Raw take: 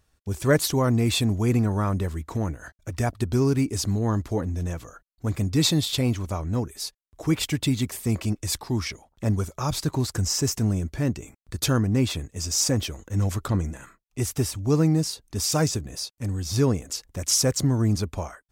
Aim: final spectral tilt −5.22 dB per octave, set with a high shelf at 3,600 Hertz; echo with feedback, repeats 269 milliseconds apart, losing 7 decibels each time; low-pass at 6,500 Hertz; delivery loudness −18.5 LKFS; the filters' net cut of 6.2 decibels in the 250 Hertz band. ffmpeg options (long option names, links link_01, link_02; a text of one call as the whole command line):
ffmpeg -i in.wav -af "lowpass=6500,equalizer=frequency=250:width_type=o:gain=-8.5,highshelf=frequency=3600:gain=-4.5,aecho=1:1:269|538|807|1076|1345:0.447|0.201|0.0905|0.0407|0.0183,volume=9.5dB" out.wav